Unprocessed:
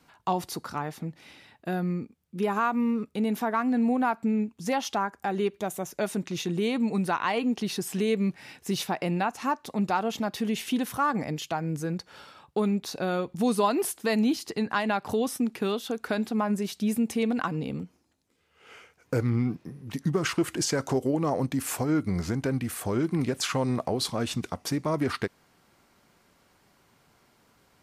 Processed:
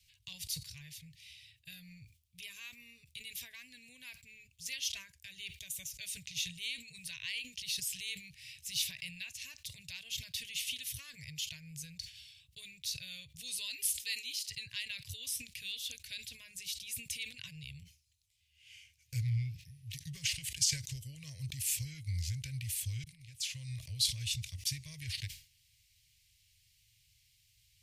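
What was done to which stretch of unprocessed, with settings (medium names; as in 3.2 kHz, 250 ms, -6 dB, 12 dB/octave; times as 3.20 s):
14.01–14.49 s: high-pass 240 Hz 24 dB/octave
23.04–23.94 s: fade in
whole clip: inverse Chebyshev band-stop 200–1400 Hz, stop band 40 dB; decay stretcher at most 140 dB/s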